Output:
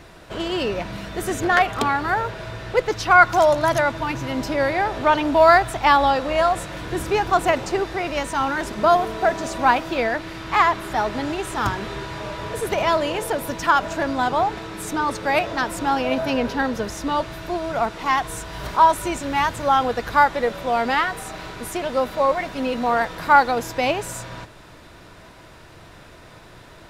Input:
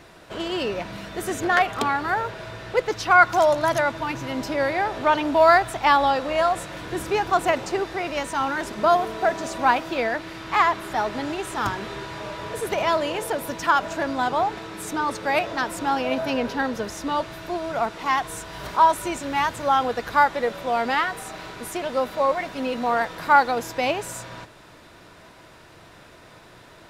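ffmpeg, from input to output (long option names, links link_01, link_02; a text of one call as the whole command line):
ffmpeg -i in.wav -af "lowshelf=frequency=91:gain=9.5,volume=2dB" out.wav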